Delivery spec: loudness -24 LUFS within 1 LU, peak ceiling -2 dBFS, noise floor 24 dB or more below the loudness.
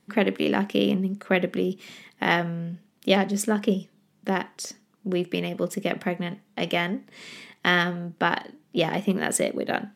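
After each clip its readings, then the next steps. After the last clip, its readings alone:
loudness -26.0 LUFS; peak level -4.5 dBFS; loudness target -24.0 LUFS
-> trim +2 dB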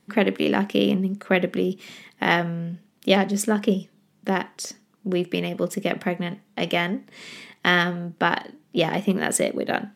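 loudness -24.0 LUFS; peak level -2.5 dBFS; noise floor -63 dBFS

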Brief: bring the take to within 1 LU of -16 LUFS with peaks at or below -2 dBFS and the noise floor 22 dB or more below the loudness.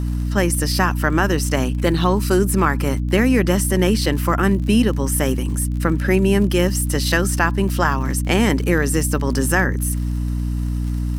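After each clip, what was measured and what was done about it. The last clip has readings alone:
tick rate 44 per s; hum 60 Hz; highest harmonic 300 Hz; hum level -19 dBFS; loudness -19.0 LUFS; peak level -1.5 dBFS; loudness target -16.0 LUFS
-> de-click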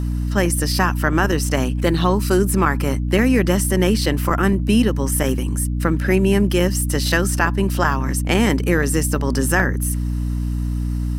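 tick rate 0.89 per s; hum 60 Hz; highest harmonic 300 Hz; hum level -19 dBFS
-> de-hum 60 Hz, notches 5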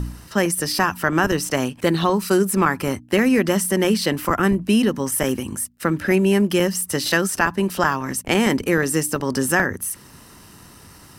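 hum not found; loudness -20.0 LUFS; peak level -3.0 dBFS; loudness target -16.0 LUFS
-> trim +4 dB; peak limiter -2 dBFS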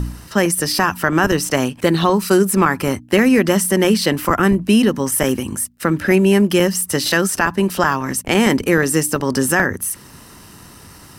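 loudness -16.5 LUFS; peak level -2.0 dBFS; noise floor -42 dBFS

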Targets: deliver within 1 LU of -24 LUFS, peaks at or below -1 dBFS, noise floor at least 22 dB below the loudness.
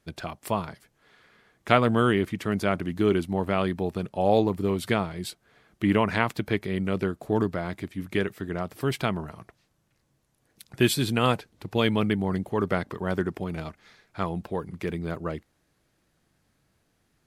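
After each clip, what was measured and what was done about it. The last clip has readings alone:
loudness -27.0 LUFS; peak level -1.5 dBFS; loudness target -24.0 LUFS
-> trim +3 dB; peak limiter -1 dBFS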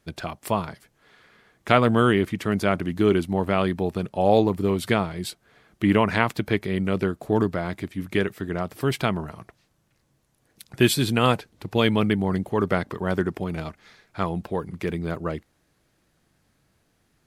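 loudness -24.0 LUFS; peak level -1.0 dBFS; noise floor -68 dBFS

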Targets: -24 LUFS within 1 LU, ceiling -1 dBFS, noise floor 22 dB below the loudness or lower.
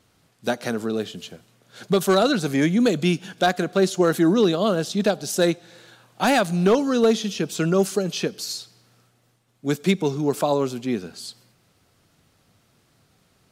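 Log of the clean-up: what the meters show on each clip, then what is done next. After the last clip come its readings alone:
clipped samples 0.4%; clipping level -10.0 dBFS; loudness -22.0 LUFS; peak level -10.0 dBFS; loudness target -24.0 LUFS
-> clip repair -10 dBFS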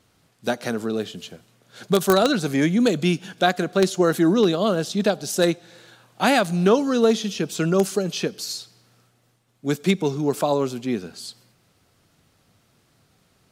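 clipped samples 0.0%; loudness -22.0 LUFS; peak level -1.0 dBFS; loudness target -24.0 LUFS
-> trim -2 dB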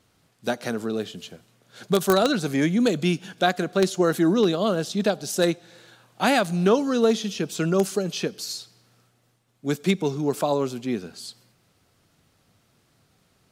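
loudness -24.0 LUFS; peak level -3.0 dBFS; noise floor -66 dBFS

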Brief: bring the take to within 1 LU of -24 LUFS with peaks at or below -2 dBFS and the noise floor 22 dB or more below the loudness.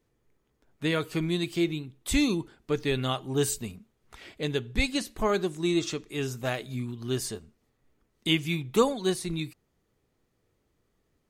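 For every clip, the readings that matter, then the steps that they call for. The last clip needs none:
loudness -29.0 LUFS; peak level -9.5 dBFS; loudness target -24.0 LUFS
-> trim +5 dB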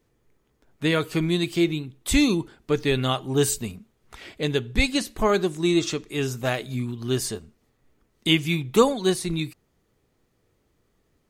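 loudness -24.5 LUFS; peak level -4.5 dBFS; noise floor -69 dBFS

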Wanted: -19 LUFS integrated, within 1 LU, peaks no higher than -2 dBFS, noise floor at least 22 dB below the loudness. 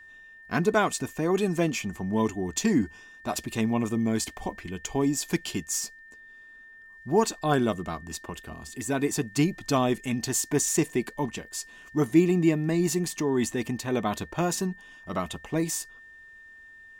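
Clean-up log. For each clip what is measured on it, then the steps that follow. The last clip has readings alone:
steady tone 1.8 kHz; tone level -47 dBFS; loudness -27.5 LUFS; peak level -9.0 dBFS; loudness target -19.0 LUFS
-> band-stop 1.8 kHz, Q 30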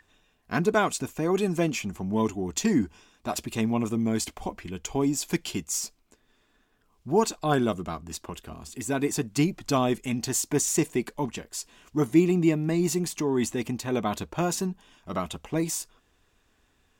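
steady tone not found; loudness -27.5 LUFS; peak level -9.0 dBFS; loudness target -19.0 LUFS
-> trim +8.5 dB; peak limiter -2 dBFS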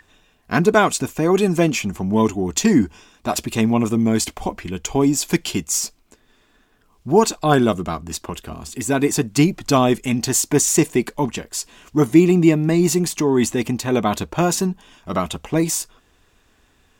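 loudness -19.0 LUFS; peak level -2.0 dBFS; noise floor -59 dBFS

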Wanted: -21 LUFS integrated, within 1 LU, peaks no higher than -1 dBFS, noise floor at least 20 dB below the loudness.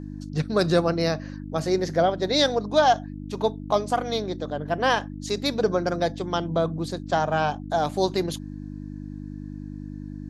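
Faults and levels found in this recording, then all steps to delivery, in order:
hum 50 Hz; highest harmonic 300 Hz; hum level -33 dBFS; loudness -25.0 LUFS; peak level -6.5 dBFS; loudness target -21.0 LUFS
-> de-hum 50 Hz, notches 6; trim +4 dB

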